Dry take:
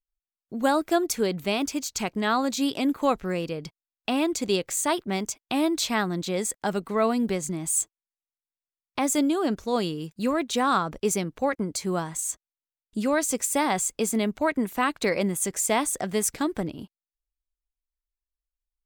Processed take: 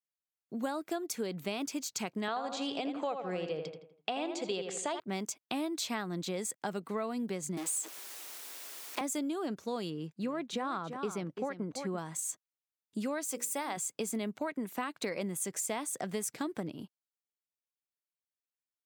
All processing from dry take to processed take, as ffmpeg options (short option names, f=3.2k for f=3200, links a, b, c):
-filter_complex "[0:a]asettb=1/sr,asplit=3[a][b][c];[a]atrim=end=2.284[d];[b]atrim=start=2.28:end=5,asetpts=PTS-STARTPTS,afade=t=in:d=0.004:c=qsin,afade=t=out:st=2.716:d=0.004:c=qsin,highpass=120,equalizer=f=250:t=q:w=4:g=-8,equalizer=f=470:t=q:w=4:g=5,equalizer=f=730:t=q:w=4:g=8,equalizer=f=3.1k:t=q:w=4:g=5,equalizer=f=6k:t=q:w=4:g=-5,lowpass=f=7.3k:w=0.5412,lowpass=f=7.3k:w=1.3066,asplit=2[e][f];[f]adelay=82,lowpass=f=3.1k:p=1,volume=-7dB,asplit=2[g][h];[h]adelay=82,lowpass=f=3.1k:p=1,volume=0.45,asplit=2[i][j];[j]adelay=82,lowpass=f=3.1k:p=1,volume=0.45,asplit=2[k][l];[l]adelay=82,lowpass=f=3.1k:p=1,volume=0.45,asplit=2[m][n];[n]adelay=82,lowpass=f=3.1k:p=1,volume=0.45[o];[e][g][i][k][m][o]amix=inputs=6:normalize=0,atrim=end_sample=119952[p];[c]atrim=start=4.996[q];[d][p]acrossfade=d=0.004:c1=hsin:c2=qsin[r];[r][q]acrossfade=d=0.004:c1=qsin:c2=hsin,asettb=1/sr,asplit=3[s][t][u];[s]atrim=end=7.574[v];[t]atrim=start=7.57:end=9.01,asetpts=PTS-STARTPTS,afade=t=in:d=0.004:c=qsin,afade=t=out:st=1.436:d=0.004:c=qsin,aeval=exprs='val(0)+0.5*0.0355*sgn(val(0))':c=same,highpass=f=290:w=0.5412,highpass=f=290:w=1.3066[w];[u]atrim=start=9.006[x];[v][w]acrossfade=d=0.004:c1=hsin:c2=qsin[y];[y][x]acrossfade=d=0.004:c1=qsin:c2=hsin,asettb=1/sr,asplit=3[z][aa][ab];[z]atrim=end=9.904[ac];[aa]atrim=start=9.9:end=11.98,asetpts=PTS-STARTPTS,afade=t=in:d=0.004:c=qsin,afade=t=out:st=2.076:d=0.004:c=qsin,lowpass=f=2.6k:p=1,aecho=1:1:339:0.266,atrim=end_sample=91728[ad];[ab]atrim=start=11.976[ae];[ac][ad]acrossfade=d=0.004:c1=hsin:c2=qsin[af];[af][ae]acrossfade=d=0.004:c1=qsin:c2=hsin,asettb=1/sr,asplit=3[ag][ah][ai];[ag]atrim=end=13.254[aj];[ah]atrim=start=13.25:end=13.77,asetpts=PTS-STARTPTS,afade=t=in:d=0.004:c=qsin,afade=t=out:st=0.516:d=0.004:c=qsin,lowpass=f=2.6k:p=1,aemphasis=mode=production:type=bsi,bandreject=f=60:t=h:w=6,bandreject=f=120:t=h:w=6,bandreject=f=180:t=h:w=6,bandreject=f=240:t=h:w=6,bandreject=f=300:t=h:w=6,bandreject=f=360:t=h:w=6,bandreject=f=420:t=h:w=6,bandreject=f=480:t=h:w=6,bandreject=f=540:t=h:w=6[ak];[ai]atrim=start=13.766[al];[aj][ak]acrossfade=d=0.004:c1=hsin:c2=qsin[am];[am][al]acrossfade=d=0.004:c1=qsin:c2=hsin,highpass=f=120:w=0.5412,highpass=f=120:w=1.3066,acompressor=threshold=-27dB:ratio=6,volume=-5dB"